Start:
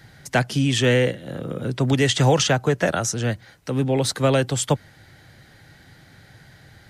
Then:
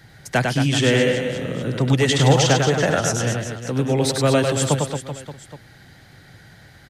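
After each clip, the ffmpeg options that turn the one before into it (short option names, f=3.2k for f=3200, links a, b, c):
-af "aecho=1:1:100|225|381.2|576.6|820.7:0.631|0.398|0.251|0.158|0.1"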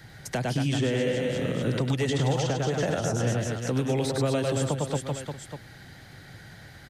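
-filter_complex "[0:a]acrossover=split=950|2300[a][b][c];[a]acompressor=threshold=-21dB:ratio=4[d];[b]acompressor=threshold=-41dB:ratio=4[e];[c]acompressor=threshold=-36dB:ratio=4[f];[d][e][f]amix=inputs=3:normalize=0,alimiter=limit=-16dB:level=0:latency=1:release=259"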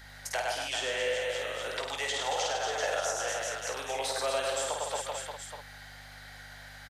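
-filter_complex "[0:a]highpass=f=610:w=0.5412,highpass=f=610:w=1.3066,aeval=exprs='val(0)+0.00224*(sin(2*PI*50*n/s)+sin(2*PI*2*50*n/s)/2+sin(2*PI*3*50*n/s)/3+sin(2*PI*4*50*n/s)/4+sin(2*PI*5*50*n/s)/5)':c=same,asplit=2[a][b];[b]aecho=0:1:18|52:0.355|0.596[c];[a][c]amix=inputs=2:normalize=0"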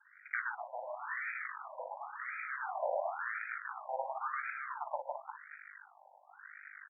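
-af "asubboost=boost=11:cutoff=120,aeval=exprs='0.106*(cos(1*acos(clip(val(0)/0.106,-1,1)))-cos(1*PI/2))+0.00473*(cos(3*acos(clip(val(0)/0.106,-1,1)))-cos(3*PI/2))+0.00944*(cos(7*acos(clip(val(0)/0.106,-1,1)))-cos(7*PI/2))+0.00841*(cos(8*acos(clip(val(0)/0.106,-1,1)))-cos(8*PI/2))':c=same,afftfilt=real='re*between(b*sr/1024,710*pow(1800/710,0.5+0.5*sin(2*PI*0.94*pts/sr))/1.41,710*pow(1800/710,0.5+0.5*sin(2*PI*0.94*pts/sr))*1.41)':imag='im*between(b*sr/1024,710*pow(1800/710,0.5+0.5*sin(2*PI*0.94*pts/sr))/1.41,710*pow(1800/710,0.5+0.5*sin(2*PI*0.94*pts/sr))*1.41)':win_size=1024:overlap=0.75,volume=2.5dB"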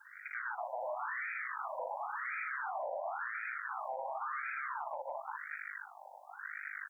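-af "bass=f=250:g=7,treble=f=4k:g=8,acompressor=threshold=-39dB:ratio=10,alimiter=level_in=15.5dB:limit=-24dB:level=0:latency=1:release=12,volume=-15.5dB,volume=8dB"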